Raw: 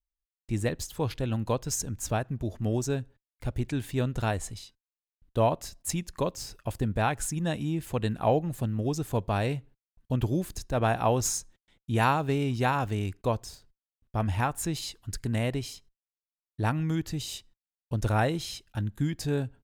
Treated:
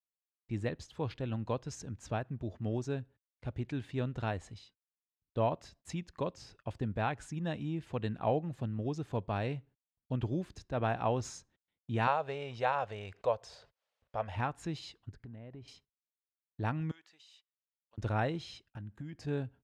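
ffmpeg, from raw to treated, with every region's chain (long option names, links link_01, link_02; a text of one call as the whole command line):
ffmpeg -i in.wav -filter_complex "[0:a]asettb=1/sr,asplit=3[link_01][link_02][link_03];[link_01]atrim=end=12.074[link_04];[link_02]atrim=start=12.07:end=14.36,asetpts=PTS-STARTPTS,afade=type=in:duration=0.004:curve=qsin,afade=type=out:start_time=2.286:duration=0.004:curve=qsin,lowshelf=frequency=400:width_type=q:width=3:gain=-9.5,acompressor=mode=upward:threshold=-30dB:ratio=2.5:attack=3.2:release=140:knee=2.83:detection=peak[link_05];[link_03]atrim=start=14.356[link_06];[link_04][link_05]acrossfade=duration=0.004:curve1=hsin:curve2=qsin[link_07];[link_07][link_06]acrossfade=duration=0.004:curve1=qsin:curve2=hsin,asettb=1/sr,asplit=3[link_08][link_09][link_10];[link_08]atrim=end=15.094[link_11];[link_09]atrim=start=15.09:end=15.68,asetpts=PTS-STARTPTS,afade=type=in:duration=0.004:curve=qsin,afade=type=out:start_time=0.586:duration=0.004:curve=qsin,lowpass=frequency=1000:poles=1,acompressor=threshold=-37dB:ratio=8:attack=3.2:release=140:knee=1:detection=peak[link_12];[link_10]atrim=start=15.676[link_13];[link_11][link_12]acrossfade=duration=0.004:curve1=hsin:curve2=qsin[link_14];[link_14][link_13]acrossfade=duration=0.004:curve1=qsin:curve2=hsin,asettb=1/sr,asplit=3[link_15][link_16][link_17];[link_15]atrim=end=16.914[link_18];[link_16]atrim=start=16.91:end=17.98,asetpts=PTS-STARTPTS,afade=type=in:duration=0.004:curve=qsin,afade=type=out:start_time=1.066:duration=0.004:curve=qsin,highpass=1000,acompressor=threshold=-52dB:ratio=2.5:attack=3.2:release=140:knee=1:detection=peak[link_19];[link_17]atrim=start=17.976[link_20];[link_18][link_19]acrossfade=duration=0.004:curve1=hsin:curve2=qsin[link_21];[link_21][link_20]acrossfade=duration=0.004:curve1=qsin:curve2=hsin,asettb=1/sr,asplit=3[link_22][link_23][link_24];[link_22]atrim=end=18.704[link_25];[link_23]atrim=start=18.7:end=19.27,asetpts=PTS-STARTPTS,afade=type=in:duration=0.004:curve=qsin,afade=type=out:start_time=0.566:duration=0.004:curve=qsin,equalizer=frequency=3600:width=4.6:gain=-9,acompressor=threshold=-33dB:ratio=5:attack=3.2:release=140:knee=1:detection=peak[link_26];[link_24]atrim=start=19.266[link_27];[link_25][link_26]acrossfade=duration=0.004:curve1=hsin:curve2=qsin[link_28];[link_28][link_27]acrossfade=duration=0.004:curve1=qsin:curve2=hsin,highpass=65,agate=range=-15dB:threshold=-53dB:ratio=16:detection=peak,lowpass=3900,volume=-6.5dB" out.wav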